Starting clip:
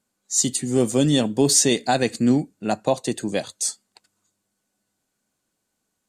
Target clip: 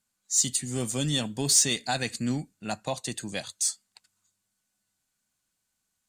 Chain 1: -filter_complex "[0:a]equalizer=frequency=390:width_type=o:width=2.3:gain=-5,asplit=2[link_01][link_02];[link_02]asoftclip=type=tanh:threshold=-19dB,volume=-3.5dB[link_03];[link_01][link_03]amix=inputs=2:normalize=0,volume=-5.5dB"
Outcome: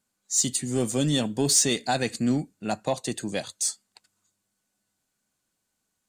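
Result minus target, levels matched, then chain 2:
500 Hz band +5.0 dB
-filter_complex "[0:a]equalizer=frequency=390:width_type=o:width=2.3:gain=-13,asplit=2[link_01][link_02];[link_02]asoftclip=type=tanh:threshold=-19dB,volume=-3.5dB[link_03];[link_01][link_03]amix=inputs=2:normalize=0,volume=-5.5dB"

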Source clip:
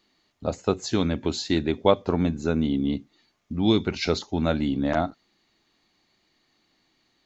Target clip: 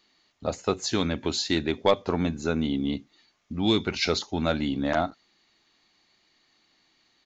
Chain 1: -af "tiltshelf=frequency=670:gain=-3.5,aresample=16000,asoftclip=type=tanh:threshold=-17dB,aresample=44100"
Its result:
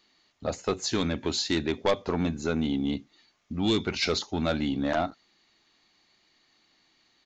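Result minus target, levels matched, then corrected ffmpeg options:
soft clipping: distortion +8 dB
-af "tiltshelf=frequency=670:gain=-3.5,aresample=16000,asoftclip=type=tanh:threshold=-9dB,aresample=44100"

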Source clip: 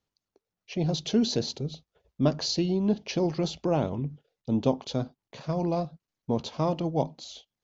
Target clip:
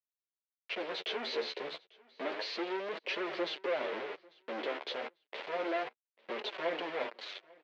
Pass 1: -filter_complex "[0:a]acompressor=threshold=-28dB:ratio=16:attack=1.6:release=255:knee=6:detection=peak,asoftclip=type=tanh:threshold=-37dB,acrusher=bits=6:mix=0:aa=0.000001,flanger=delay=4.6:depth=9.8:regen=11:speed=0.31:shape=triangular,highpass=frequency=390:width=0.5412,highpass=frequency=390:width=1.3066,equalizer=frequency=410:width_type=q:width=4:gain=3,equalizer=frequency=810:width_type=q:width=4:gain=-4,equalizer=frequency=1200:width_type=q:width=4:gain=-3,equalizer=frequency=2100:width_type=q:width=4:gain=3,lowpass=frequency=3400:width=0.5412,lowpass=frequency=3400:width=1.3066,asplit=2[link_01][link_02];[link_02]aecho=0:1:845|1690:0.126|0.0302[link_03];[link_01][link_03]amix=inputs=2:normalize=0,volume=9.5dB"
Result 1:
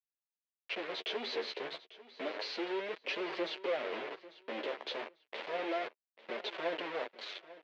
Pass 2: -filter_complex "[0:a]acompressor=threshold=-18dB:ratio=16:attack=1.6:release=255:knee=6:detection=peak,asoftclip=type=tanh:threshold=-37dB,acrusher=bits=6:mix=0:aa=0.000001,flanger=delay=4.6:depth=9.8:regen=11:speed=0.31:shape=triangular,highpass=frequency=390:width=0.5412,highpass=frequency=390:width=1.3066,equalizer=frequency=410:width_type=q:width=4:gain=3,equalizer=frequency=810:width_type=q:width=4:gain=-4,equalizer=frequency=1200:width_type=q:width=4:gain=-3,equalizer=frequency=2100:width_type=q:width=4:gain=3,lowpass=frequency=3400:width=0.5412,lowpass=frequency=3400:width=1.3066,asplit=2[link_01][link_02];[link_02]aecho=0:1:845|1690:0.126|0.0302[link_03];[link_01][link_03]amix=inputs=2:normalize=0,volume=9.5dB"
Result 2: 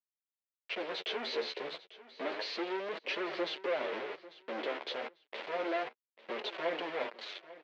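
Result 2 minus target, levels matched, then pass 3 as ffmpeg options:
echo-to-direct +7.5 dB
-filter_complex "[0:a]acompressor=threshold=-18dB:ratio=16:attack=1.6:release=255:knee=6:detection=peak,asoftclip=type=tanh:threshold=-37dB,acrusher=bits=6:mix=0:aa=0.000001,flanger=delay=4.6:depth=9.8:regen=11:speed=0.31:shape=triangular,highpass=frequency=390:width=0.5412,highpass=frequency=390:width=1.3066,equalizer=frequency=410:width_type=q:width=4:gain=3,equalizer=frequency=810:width_type=q:width=4:gain=-4,equalizer=frequency=1200:width_type=q:width=4:gain=-3,equalizer=frequency=2100:width_type=q:width=4:gain=3,lowpass=frequency=3400:width=0.5412,lowpass=frequency=3400:width=1.3066,asplit=2[link_01][link_02];[link_02]aecho=0:1:845|1690:0.0531|0.0127[link_03];[link_01][link_03]amix=inputs=2:normalize=0,volume=9.5dB"

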